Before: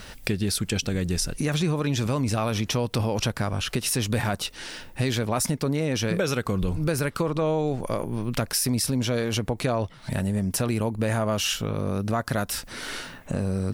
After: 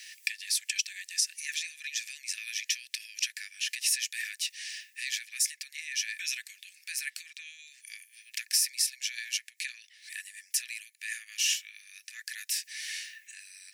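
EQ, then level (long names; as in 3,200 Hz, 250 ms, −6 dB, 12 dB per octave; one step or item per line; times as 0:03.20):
Chebyshev high-pass with heavy ripple 1,700 Hz, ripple 6 dB
+2.0 dB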